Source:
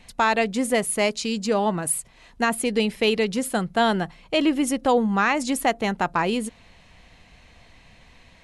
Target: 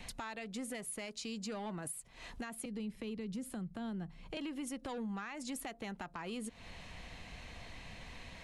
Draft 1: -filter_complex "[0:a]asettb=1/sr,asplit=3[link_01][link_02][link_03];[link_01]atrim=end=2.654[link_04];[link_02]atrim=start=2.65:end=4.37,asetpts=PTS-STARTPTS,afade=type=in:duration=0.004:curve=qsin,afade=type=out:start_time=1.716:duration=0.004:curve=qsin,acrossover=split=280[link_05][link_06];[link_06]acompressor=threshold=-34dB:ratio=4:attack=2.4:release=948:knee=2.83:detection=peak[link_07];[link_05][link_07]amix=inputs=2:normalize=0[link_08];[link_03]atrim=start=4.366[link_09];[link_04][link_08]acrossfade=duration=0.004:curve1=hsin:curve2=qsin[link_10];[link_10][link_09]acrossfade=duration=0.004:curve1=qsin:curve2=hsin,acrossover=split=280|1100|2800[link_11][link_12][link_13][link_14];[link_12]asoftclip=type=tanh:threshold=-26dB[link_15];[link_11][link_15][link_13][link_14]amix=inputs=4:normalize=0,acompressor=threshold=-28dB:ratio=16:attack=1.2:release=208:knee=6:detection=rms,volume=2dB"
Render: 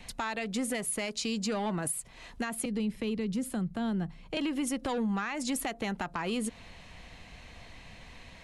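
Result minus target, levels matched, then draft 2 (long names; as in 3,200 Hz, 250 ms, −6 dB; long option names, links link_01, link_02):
downward compressor: peak gain reduction −10 dB
-filter_complex "[0:a]asettb=1/sr,asplit=3[link_01][link_02][link_03];[link_01]atrim=end=2.654[link_04];[link_02]atrim=start=2.65:end=4.37,asetpts=PTS-STARTPTS,afade=type=in:duration=0.004:curve=qsin,afade=type=out:start_time=1.716:duration=0.004:curve=qsin,acrossover=split=280[link_05][link_06];[link_06]acompressor=threshold=-34dB:ratio=4:attack=2.4:release=948:knee=2.83:detection=peak[link_07];[link_05][link_07]amix=inputs=2:normalize=0[link_08];[link_03]atrim=start=4.366[link_09];[link_04][link_08]acrossfade=duration=0.004:curve1=hsin:curve2=qsin[link_10];[link_10][link_09]acrossfade=duration=0.004:curve1=qsin:curve2=hsin,acrossover=split=280|1100|2800[link_11][link_12][link_13][link_14];[link_12]asoftclip=type=tanh:threshold=-26dB[link_15];[link_11][link_15][link_13][link_14]amix=inputs=4:normalize=0,acompressor=threshold=-38.5dB:ratio=16:attack=1.2:release=208:knee=6:detection=rms,volume=2dB"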